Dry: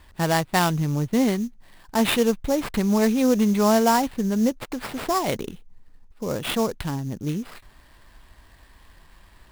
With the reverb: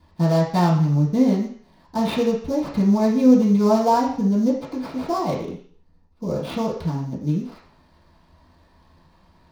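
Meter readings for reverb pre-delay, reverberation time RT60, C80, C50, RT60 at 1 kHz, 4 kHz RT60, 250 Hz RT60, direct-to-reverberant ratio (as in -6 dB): 3 ms, 0.55 s, 9.0 dB, 5.5 dB, 0.55 s, 0.60 s, 0.50 s, -11.0 dB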